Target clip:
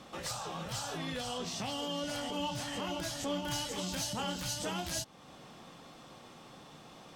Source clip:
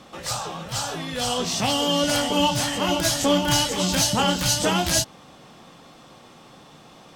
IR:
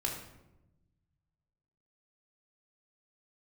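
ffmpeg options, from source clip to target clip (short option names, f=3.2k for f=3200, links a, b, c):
-filter_complex "[0:a]alimiter=limit=-23dB:level=0:latency=1:release=344,asettb=1/sr,asplit=3[a][b][c];[a]atrim=end=0.974[d];[b]atrim=start=0.97:end=3.45,asetpts=PTS-STARTPTS,afade=t=in:d=0.004:c=qsin,afade=t=out:st=2.476:d=0.004:c=qsin,highshelf=f=6.4k:g=-5[e];[c]atrim=start=3.446[f];[d][e]acrossfade=d=0.004:c1=hsin:c2=qsin[g];[g][f]acrossfade=d=0.004:c1=qsin:c2=hsin,volume=-5dB"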